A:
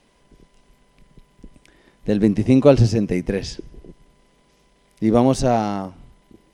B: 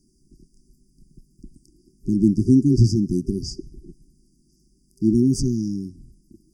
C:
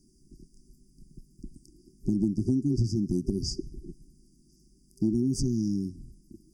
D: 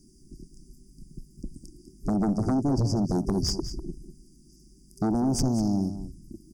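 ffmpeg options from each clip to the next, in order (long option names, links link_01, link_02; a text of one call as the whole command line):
ffmpeg -i in.wav -af "afftfilt=real='re*(1-between(b*sr/4096,390,4600))':imag='im*(1-between(b*sr/4096,390,4600))':win_size=4096:overlap=0.75" out.wav
ffmpeg -i in.wav -af "acompressor=threshold=-23dB:ratio=6" out.wav
ffmpeg -i in.wav -af "aeval=exprs='0.188*(cos(1*acos(clip(val(0)/0.188,-1,1)))-cos(1*PI/2))+0.075*(cos(5*acos(clip(val(0)/0.188,-1,1)))-cos(5*PI/2))+0.0133*(cos(8*acos(clip(val(0)/0.188,-1,1)))-cos(8*PI/2))':channel_layout=same,aecho=1:1:198:0.251,volume=-3.5dB" out.wav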